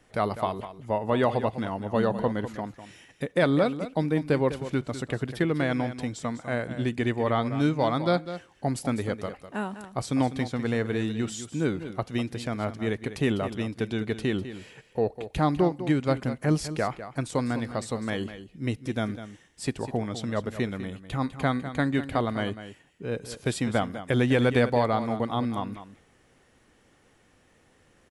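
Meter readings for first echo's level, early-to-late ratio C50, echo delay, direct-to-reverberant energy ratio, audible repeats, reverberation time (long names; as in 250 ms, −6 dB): −12.0 dB, no reverb audible, 201 ms, no reverb audible, 1, no reverb audible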